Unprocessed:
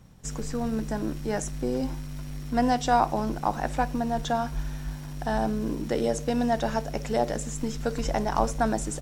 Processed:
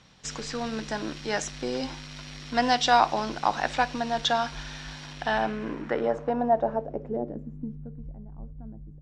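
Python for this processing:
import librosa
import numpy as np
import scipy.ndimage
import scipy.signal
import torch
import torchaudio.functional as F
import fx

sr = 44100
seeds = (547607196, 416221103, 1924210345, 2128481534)

y = scipy.signal.sosfilt(scipy.signal.butter(2, 11000.0, 'lowpass', fs=sr, output='sos'), x)
y = fx.tilt_shelf(y, sr, db=-5.5, hz=970.0)
y = fx.filter_sweep_lowpass(y, sr, from_hz=4200.0, to_hz=110.0, start_s=5.04, end_s=8.14, q=1.5)
y = fx.low_shelf(y, sr, hz=150.0, db=-9.5)
y = y * librosa.db_to_amplitude(3.0)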